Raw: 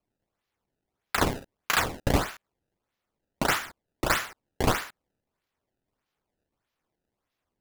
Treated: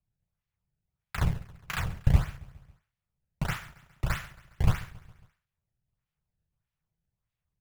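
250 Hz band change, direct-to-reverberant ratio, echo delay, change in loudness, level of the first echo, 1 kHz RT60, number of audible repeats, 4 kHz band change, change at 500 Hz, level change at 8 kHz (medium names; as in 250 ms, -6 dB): -5.0 dB, no reverb, 137 ms, -3.5 dB, -20.0 dB, no reverb, 3, -11.0 dB, -13.5 dB, -13.0 dB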